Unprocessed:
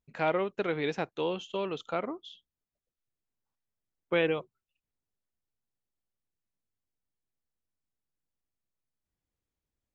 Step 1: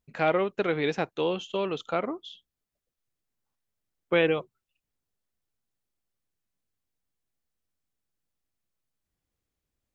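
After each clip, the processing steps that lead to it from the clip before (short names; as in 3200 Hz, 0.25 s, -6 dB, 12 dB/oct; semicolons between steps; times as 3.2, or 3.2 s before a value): notch 940 Hz, Q 24; gain +4 dB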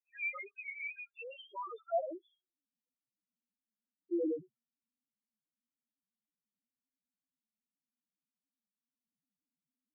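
band-pass sweep 2400 Hz -> 240 Hz, 1.24–2.73; loudest bins only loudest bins 1; gain +7.5 dB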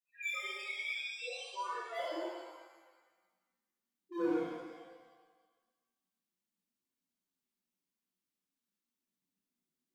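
hard clip -35.5 dBFS, distortion -8 dB; shimmer reverb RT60 1.3 s, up +7 st, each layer -8 dB, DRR -9.5 dB; gain -7.5 dB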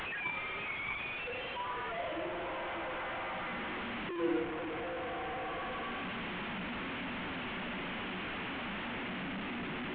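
delta modulation 16 kbps, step -32.5 dBFS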